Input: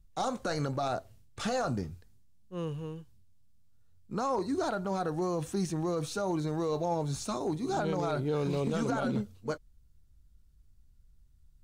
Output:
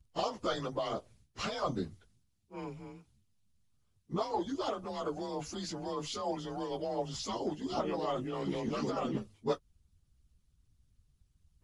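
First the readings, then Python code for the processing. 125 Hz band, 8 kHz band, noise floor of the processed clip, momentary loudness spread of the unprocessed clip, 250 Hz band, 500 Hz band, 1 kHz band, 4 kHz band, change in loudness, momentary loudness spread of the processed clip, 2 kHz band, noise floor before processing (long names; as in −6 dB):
−9.0 dB, −4.5 dB, −74 dBFS, 8 LU, −5.0 dB, −3.5 dB, −3.0 dB, +1.5 dB, −4.0 dB, 9 LU, −5.5 dB, −61 dBFS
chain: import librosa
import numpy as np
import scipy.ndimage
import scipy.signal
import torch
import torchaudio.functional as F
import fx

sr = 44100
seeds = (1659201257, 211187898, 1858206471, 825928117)

y = fx.partial_stretch(x, sr, pct=92)
y = fx.hpss(y, sr, part='harmonic', gain_db=-16)
y = y * 10.0 ** (5.5 / 20.0)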